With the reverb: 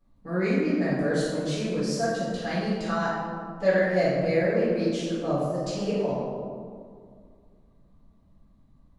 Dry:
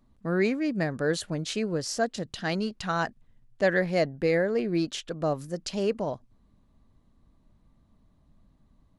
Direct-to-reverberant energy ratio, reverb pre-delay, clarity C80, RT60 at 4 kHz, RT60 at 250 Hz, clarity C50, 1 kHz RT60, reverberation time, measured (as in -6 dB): -12.0 dB, 6 ms, 0.5 dB, 0.95 s, 2.5 s, -2.0 dB, 2.0 s, 2.1 s